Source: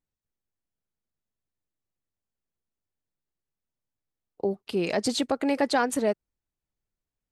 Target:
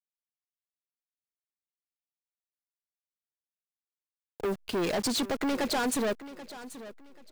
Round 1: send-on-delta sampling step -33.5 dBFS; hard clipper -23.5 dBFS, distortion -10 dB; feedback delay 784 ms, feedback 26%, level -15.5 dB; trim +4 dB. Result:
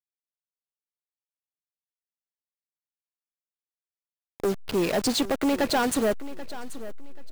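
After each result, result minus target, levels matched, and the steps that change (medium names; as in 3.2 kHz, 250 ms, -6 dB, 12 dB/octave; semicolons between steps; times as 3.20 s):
send-on-delta sampling: distortion +16 dB; hard clipper: distortion -5 dB
change: send-on-delta sampling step -44 dBFS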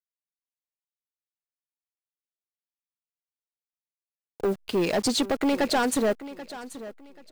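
hard clipper: distortion -5 dB
change: hard clipper -30.5 dBFS, distortion -5 dB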